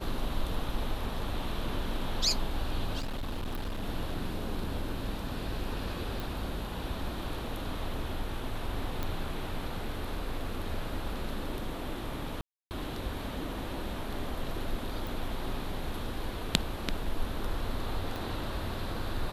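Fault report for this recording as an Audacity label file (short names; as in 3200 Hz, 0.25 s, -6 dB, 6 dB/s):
2.990000	3.830000	clipped -31 dBFS
6.200000	6.200000	pop
9.030000	9.030000	pop -19 dBFS
12.410000	12.710000	gap 0.299 s
15.070000	15.070000	pop
18.160000	18.160000	pop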